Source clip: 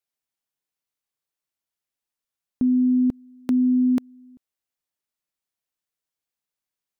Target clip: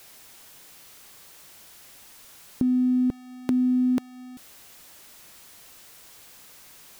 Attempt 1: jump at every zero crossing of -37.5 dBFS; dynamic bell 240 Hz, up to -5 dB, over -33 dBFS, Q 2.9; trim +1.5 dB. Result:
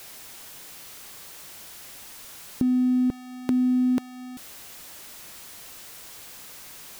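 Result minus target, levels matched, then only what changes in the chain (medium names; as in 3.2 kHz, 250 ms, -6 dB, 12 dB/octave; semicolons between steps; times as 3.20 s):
jump at every zero crossing: distortion +6 dB
change: jump at every zero crossing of -43.5 dBFS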